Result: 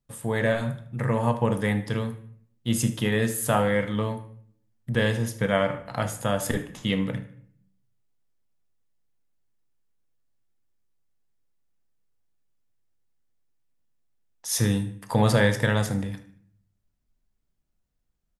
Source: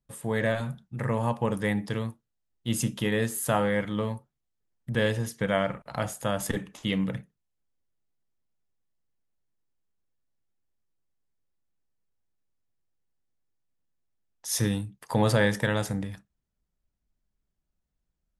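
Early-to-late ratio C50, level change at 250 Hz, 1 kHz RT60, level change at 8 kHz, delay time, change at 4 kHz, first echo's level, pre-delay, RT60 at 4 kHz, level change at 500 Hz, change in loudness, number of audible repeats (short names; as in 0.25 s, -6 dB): 12.0 dB, +2.5 dB, 0.55 s, +2.5 dB, 76 ms, +2.5 dB, -16.5 dB, 4 ms, 0.45 s, +2.5 dB, +3.0 dB, 2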